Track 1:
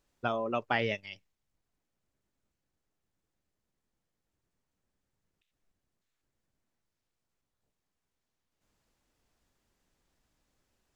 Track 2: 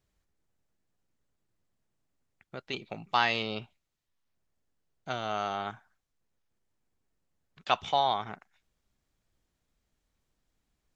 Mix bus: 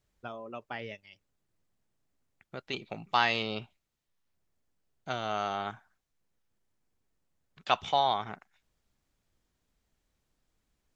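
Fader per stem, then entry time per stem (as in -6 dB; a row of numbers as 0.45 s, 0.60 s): -10.0 dB, 0.0 dB; 0.00 s, 0.00 s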